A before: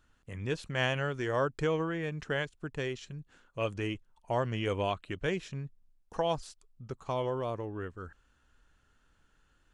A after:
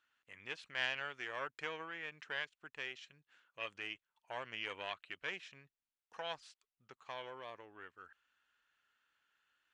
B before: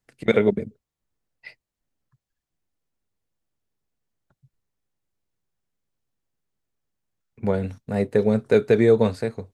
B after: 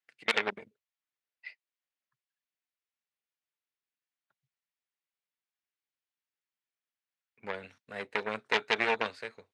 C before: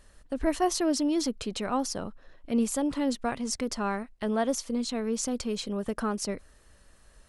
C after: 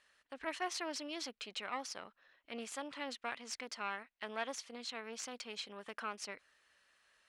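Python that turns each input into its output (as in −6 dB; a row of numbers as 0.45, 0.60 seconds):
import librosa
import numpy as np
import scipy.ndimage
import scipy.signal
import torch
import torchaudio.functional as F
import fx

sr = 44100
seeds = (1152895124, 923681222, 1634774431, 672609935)

y = fx.cheby_harmonics(x, sr, harmonics=(6, 8), levels_db=(-7, -9), full_scale_db=-4.0)
y = fx.bandpass_q(y, sr, hz=2400.0, q=1.1)
y = y * librosa.db_to_amplitude(-2.5)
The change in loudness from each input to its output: −9.5, −10.5, −13.0 LU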